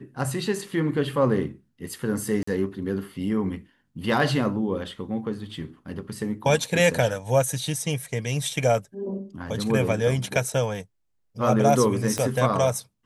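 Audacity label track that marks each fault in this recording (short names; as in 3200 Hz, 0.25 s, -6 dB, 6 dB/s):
2.430000	2.470000	gap 44 ms
12.180000	12.180000	pop -12 dBFS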